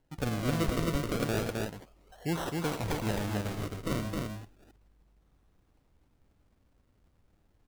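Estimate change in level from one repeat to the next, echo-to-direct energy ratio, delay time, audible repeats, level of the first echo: no regular repeats, -2.5 dB, 101 ms, 2, -12.5 dB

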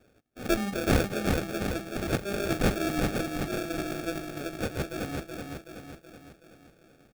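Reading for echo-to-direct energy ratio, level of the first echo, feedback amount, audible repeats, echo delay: -2.5 dB, -4.0 dB, 53%, 6, 376 ms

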